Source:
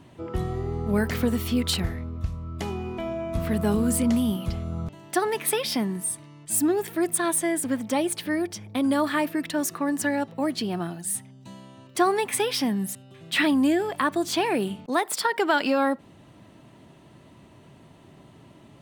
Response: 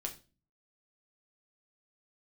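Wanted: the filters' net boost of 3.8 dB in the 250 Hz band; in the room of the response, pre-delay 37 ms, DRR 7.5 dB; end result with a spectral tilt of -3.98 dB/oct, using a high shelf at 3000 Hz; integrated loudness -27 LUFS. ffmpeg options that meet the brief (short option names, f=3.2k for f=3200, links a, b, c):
-filter_complex "[0:a]equalizer=f=250:t=o:g=4.5,highshelf=f=3k:g=6.5,asplit=2[a][b];[1:a]atrim=start_sample=2205,adelay=37[c];[b][c]afir=irnorm=-1:irlink=0,volume=-7dB[d];[a][d]amix=inputs=2:normalize=0,volume=-5dB"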